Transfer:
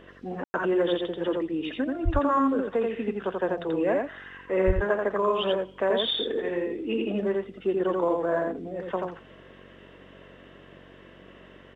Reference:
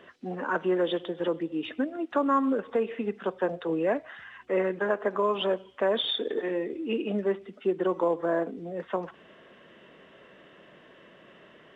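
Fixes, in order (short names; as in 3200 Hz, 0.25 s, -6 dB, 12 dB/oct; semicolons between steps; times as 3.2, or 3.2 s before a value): de-hum 46.7 Hz, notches 11; de-plosive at 2.04/4.66; room tone fill 0.44–0.54; inverse comb 85 ms -3 dB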